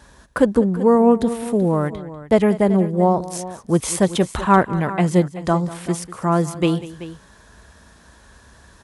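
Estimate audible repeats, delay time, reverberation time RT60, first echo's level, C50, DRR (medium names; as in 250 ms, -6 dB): 2, 194 ms, no reverb, -17.0 dB, no reverb, no reverb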